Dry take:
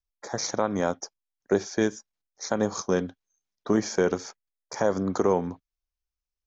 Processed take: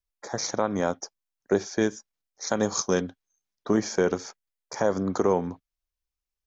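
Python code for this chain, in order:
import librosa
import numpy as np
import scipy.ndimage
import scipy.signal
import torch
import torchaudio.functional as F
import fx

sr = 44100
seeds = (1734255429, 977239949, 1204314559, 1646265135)

y = fx.high_shelf(x, sr, hz=2900.0, db=8.5, at=(2.47, 3.01))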